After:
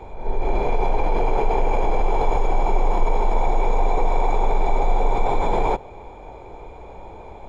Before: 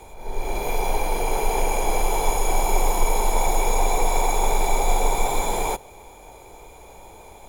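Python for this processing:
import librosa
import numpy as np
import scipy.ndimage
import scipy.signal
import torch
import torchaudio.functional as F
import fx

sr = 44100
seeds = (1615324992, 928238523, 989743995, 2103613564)

p1 = fx.over_compress(x, sr, threshold_db=-24.0, ratio=-1.0)
p2 = x + F.gain(torch.from_numpy(p1), -1.5).numpy()
y = fx.spacing_loss(p2, sr, db_at_10k=35)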